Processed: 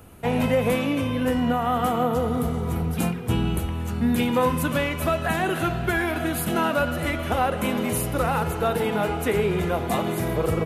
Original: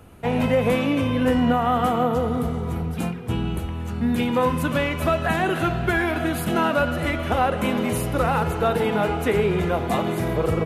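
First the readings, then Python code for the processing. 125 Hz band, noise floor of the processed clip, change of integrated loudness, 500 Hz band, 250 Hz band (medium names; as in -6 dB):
-1.0 dB, -29 dBFS, -1.5 dB, -2.0 dB, -1.5 dB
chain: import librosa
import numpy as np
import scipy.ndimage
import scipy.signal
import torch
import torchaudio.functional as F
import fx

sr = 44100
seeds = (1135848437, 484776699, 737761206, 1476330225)

y = fx.high_shelf(x, sr, hz=8000.0, db=9.5)
y = fx.rider(y, sr, range_db=10, speed_s=2.0)
y = F.gain(torch.from_numpy(y), -2.0).numpy()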